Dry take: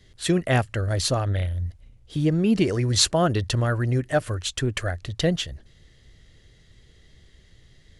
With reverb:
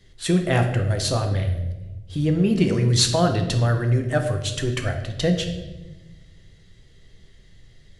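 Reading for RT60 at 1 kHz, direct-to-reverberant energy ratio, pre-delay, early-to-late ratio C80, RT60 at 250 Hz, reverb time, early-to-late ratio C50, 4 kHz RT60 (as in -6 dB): 0.85 s, 3.5 dB, 5 ms, 10.0 dB, 1.5 s, 1.1 s, 7.5 dB, 0.80 s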